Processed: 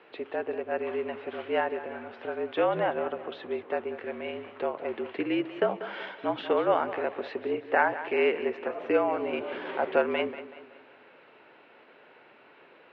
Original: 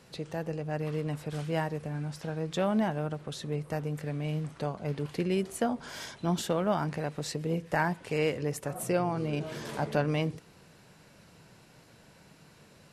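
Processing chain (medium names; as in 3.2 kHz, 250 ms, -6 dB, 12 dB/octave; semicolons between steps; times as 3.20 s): mistuned SSB -51 Hz 370–3100 Hz; modulated delay 188 ms, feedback 43%, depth 60 cents, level -13.5 dB; trim +5.5 dB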